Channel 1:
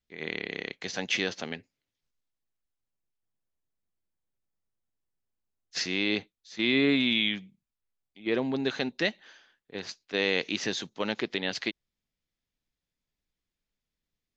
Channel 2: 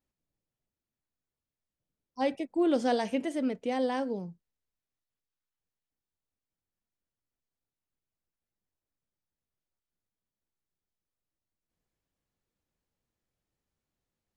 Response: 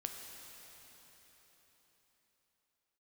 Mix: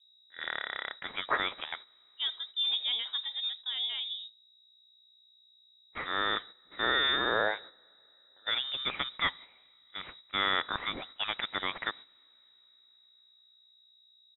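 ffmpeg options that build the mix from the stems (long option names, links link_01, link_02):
-filter_complex "[0:a]highpass=320,highshelf=frequency=2600:gain=9,adelay=200,volume=2dB,asplit=2[link_01][link_02];[link_02]volume=-23.5dB[link_03];[1:a]highpass=frequency=170:width=0.5412,highpass=frequency=170:width=1.3066,aeval=exprs='val(0)+0.00447*(sin(2*PI*60*n/s)+sin(2*PI*2*60*n/s)/2+sin(2*PI*3*60*n/s)/3+sin(2*PI*4*60*n/s)/4+sin(2*PI*5*60*n/s)/5)':channel_layout=same,volume=-5dB,asplit=3[link_04][link_05][link_06];[link_05]volume=-24dB[link_07];[link_06]apad=whole_len=642184[link_08];[link_01][link_08]sidechaincompress=threshold=-56dB:ratio=10:attack=16:release=484[link_09];[2:a]atrim=start_sample=2205[link_10];[link_03][link_10]afir=irnorm=-1:irlink=0[link_11];[link_07]aecho=0:1:86|172|258|344|430|516:1|0.4|0.16|0.064|0.0256|0.0102[link_12];[link_09][link_04][link_11][link_12]amix=inputs=4:normalize=0,agate=range=-10dB:threshold=-44dB:ratio=16:detection=peak,lowpass=frequency=3300:width_type=q:width=0.5098,lowpass=frequency=3300:width_type=q:width=0.6013,lowpass=frequency=3300:width_type=q:width=0.9,lowpass=frequency=3300:width_type=q:width=2.563,afreqshift=-3900"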